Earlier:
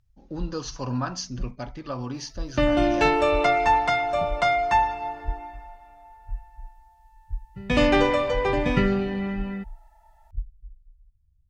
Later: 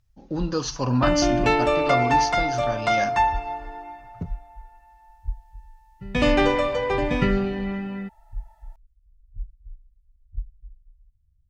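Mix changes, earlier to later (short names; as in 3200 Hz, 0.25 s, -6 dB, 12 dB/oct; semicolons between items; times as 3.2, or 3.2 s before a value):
speech +6.0 dB; second sound: entry -1.55 s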